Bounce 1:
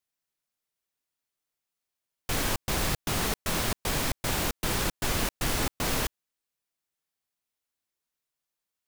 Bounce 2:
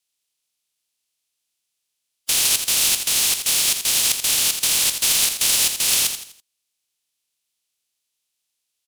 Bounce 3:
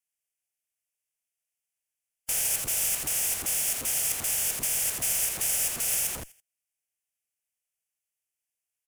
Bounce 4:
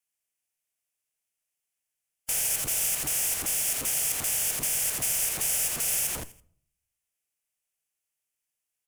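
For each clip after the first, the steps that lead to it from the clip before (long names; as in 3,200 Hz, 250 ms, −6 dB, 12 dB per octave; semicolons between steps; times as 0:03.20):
compressing power law on the bin magnitudes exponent 0.12; flat-topped bell 5,400 Hz +12 dB 2.6 octaves; on a send: repeating echo 83 ms, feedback 38%, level −8 dB
dynamic equaliser 2,200 Hz, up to −5 dB, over −35 dBFS, Q 0.8; phaser with its sweep stopped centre 1,100 Hz, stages 6; in parallel at −5 dB: comparator with hysteresis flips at −33 dBFS; on the sum: level −7 dB
in parallel at +1 dB: brickwall limiter −23 dBFS, peak gain reduction 7 dB; on the sum: convolution reverb RT60 0.60 s, pre-delay 7 ms, DRR 13 dB; level −4.5 dB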